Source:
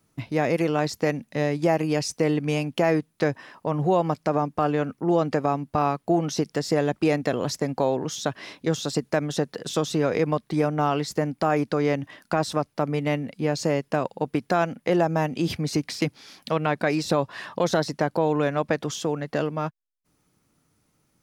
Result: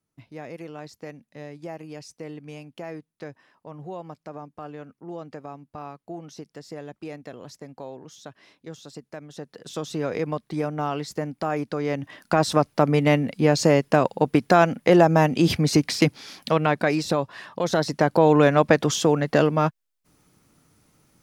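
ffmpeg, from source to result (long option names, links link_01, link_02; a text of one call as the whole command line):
ffmpeg -i in.wav -af "volume=18dB,afade=type=in:start_time=9.31:duration=0.76:silence=0.281838,afade=type=in:start_time=11.85:duration=0.8:silence=0.316228,afade=type=out:start_time=16.07:duration=1.44:silence=0.281838,afade=type=in:start_time=17.51:duration=0.85:silence=0.251189" out.wav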